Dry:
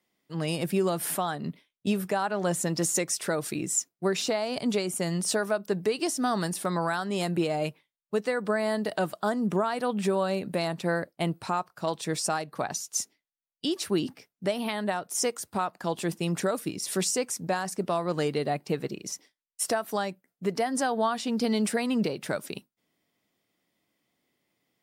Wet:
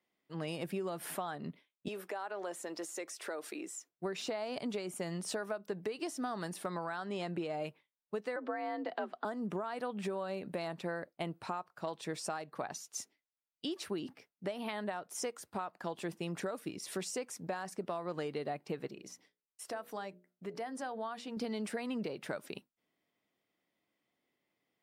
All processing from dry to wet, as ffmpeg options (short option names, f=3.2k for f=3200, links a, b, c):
-filter_complex "[0:a]asettb=1/sr,asplit=3[a][b][c];[a]atrim=end=1.884[d];[b]atrim=start=1.88:end=3.89,asetpts=PTS-STARTPTS,afade=t=in:d=0.004:c=qsin,afade=t=out:st=2.006:d=0.004:c=qsin,highpass=f=290:w=0.5412,highpass=f=290:w=1.3066,acompressor=threshold=-32dB:ratio=2.5:attack=3.2:release=140:knee=1:detection=peak[e];[c]atrim=start=3.886[f];[d][e]acrossfade=d=0.004:c1=hsin:c2=qsin[g];[g][f]acrossfade=d=0.004:c1=qsin:c2=hsin,asettb=1/sr,asplit=3[h][i][j];[h]atrim=end=6.844[k];[i]atrim=start=6.84:end=7.6,asetpts=PTS-STARTPTS,afade=t=in:d=0.004:c=qsin,afade=t=out:st=0.756:d=0.004:c=qsin,acrossover=split=7100[l][m];[m]acompressor=threshold=-50dB:ratio=4:attack=1:release=60[n];[l][n]amix=inputs=2:normalize=0,lowpass=9.6k[o];[j]atrim=start=7.596[p];[k][o]acrossfade=d=0.004:c1=hsin:c2=qsin[q];[q][p]acrossfade=d=0.004:c1=qsin:c2=hsin,asettb=1/sr,asplit=3[r][s][t];[r]atrim=end=8.364[u];[s]atrim=start=8.36:end=9.25,asetpts=PTS-STARTPTS,afade=t=in:d=0.004:c=qsin,afade=t=out:st=0.886:d=0.004:c=qsin,lowpass=3.6k,afreqshift=60[v];[t]atrim=start=9.246[w];[u][v]acrossfade=d=0.004:c1=hsin:c2=qsin[x];[x][w]acrossfade=d=0.004:c1=qsin:c2=hsin,asettb=1/sr,asplit=3[y][z][aa];[y]atrim=end=18.884[ab];[z]atrim=start=18.88:end=21.37,asetpts=PTS-STARTPTS,afade=t=in:d=0.004:c=qsin,afade=t=out:st=2.486:d=0.004:c=qsin,bandreject=f=60:t=h:w=6,bandreject=f=120:t=h:w=6,bandreject=f=180:t=h:w=6,bandreject=f=240:t=h:w=6,bandreject=f=300:t=h:w=6,bandreject=f=360:t=h:w=6,bandreject=f=420:t=h:w=6,bandreject=f=480:t=h:w=6,bandreject=f=540:t=h:w=6,bandreject=f=600:t=h:w=6,acompressor=threshold=-42dB:ratio=1.5:attack=3.2:release=140:knee=1:detection=peak[ac];[aa]atrim=start=21.366[ad];[ab][ac]acrossfade=d=0.004:c1=hsin:c2=qsin[ae];[ae][ad]acrossfade=d=0.004:c1=qsin:c2=hsin,bass=f=250:g=-5,treble=f=4k:g=-8,acompressor=threshold=-29dB:ratio=6,volume=-5dB"